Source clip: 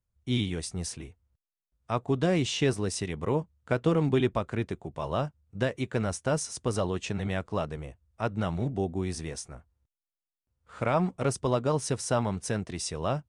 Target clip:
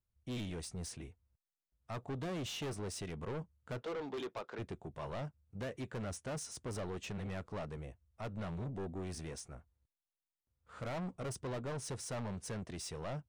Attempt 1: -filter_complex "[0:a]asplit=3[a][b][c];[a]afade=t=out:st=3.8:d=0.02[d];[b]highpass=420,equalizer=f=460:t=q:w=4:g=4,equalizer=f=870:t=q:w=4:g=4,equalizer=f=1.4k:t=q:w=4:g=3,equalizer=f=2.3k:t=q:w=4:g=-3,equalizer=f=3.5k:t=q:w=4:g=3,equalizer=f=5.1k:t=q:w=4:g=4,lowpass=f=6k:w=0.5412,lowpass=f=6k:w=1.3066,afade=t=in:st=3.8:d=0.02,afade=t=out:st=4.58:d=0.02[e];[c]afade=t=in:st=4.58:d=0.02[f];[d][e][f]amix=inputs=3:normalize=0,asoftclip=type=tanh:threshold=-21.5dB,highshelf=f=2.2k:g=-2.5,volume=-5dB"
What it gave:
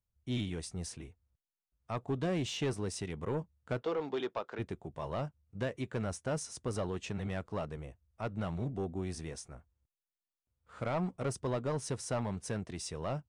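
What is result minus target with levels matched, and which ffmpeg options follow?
soft clip: distortion -9 dB
-filter_complex "[0:a]asplit=3[a][b][c];[a]afade=t=out:st=3.8:d=0.02[d];[b]highpass=420,equalizer=f=460:t=q:w=4:g=4,equalizer=f=870:t=q:w=4:g=4,equalizer=f=1.4k:t=q:w=4:g=3,equalizer=f=2.3k:t=q:w=4:g=-3,equalizer=f=3.5k:t=q:w=4:g=3,equalizer=f=5.1k:t=q:w=4:g=4,lowpass=f=6k:w=0.5412,lowpass=f=6k:w=1.3066,afade=t=in:st=3.8:d=0.02,afade=t=out:st=4.58:d=0.02[e];[c]afade=t=in:st=4.58:d=0.02[f];[d][e][f]amix=inputs=3:normalize=0,asoftclip=type=tanh:threshold=-32dB,highshelf=f=2.2k:g=-2.5,volume=-5dB"

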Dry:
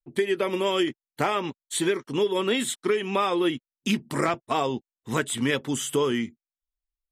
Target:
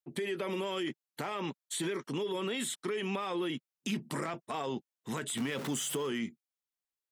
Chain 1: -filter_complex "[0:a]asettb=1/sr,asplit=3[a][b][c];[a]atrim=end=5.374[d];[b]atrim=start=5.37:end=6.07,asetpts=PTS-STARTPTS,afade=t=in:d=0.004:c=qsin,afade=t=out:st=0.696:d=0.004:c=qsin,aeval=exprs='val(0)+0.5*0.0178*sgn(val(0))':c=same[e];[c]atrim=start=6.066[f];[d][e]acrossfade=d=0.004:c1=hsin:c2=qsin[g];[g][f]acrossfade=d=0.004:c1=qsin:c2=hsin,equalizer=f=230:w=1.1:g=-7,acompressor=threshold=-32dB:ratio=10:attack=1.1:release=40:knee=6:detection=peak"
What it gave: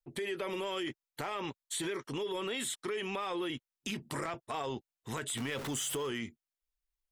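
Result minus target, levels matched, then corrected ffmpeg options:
250 Hz band -2.5 dB
-filter_complex "[0:a]asettb=1/sr,asplit=3[a][b][c];[a]atrim=end=5.374[d];[b]atrim=start=5.37:end=6.07,asetpts=PTS-STARTPTS,afade=t=in:d=0.004:c=qsin,afade=t=out:st=0.696:d=0.004:c=qsin,aeval=exprs='val(0)+0.5*0.0178*sgn(val(0))':c=same[e];[c]atrim=start=6.066[f];[d][e]acrossfade=d=0.004:c1=hsin:c2=qsin[g];[g][f]acrossfade=d=0.004:c1=qsin:c2=hsin,equalizer=f=230:w=1.1:g=-7,acompressor=threshold=-32dB:ratio=10:attack=1.1:release=40:knee=6:detection=peak,highpass=f=180:t=q:w=2.1"

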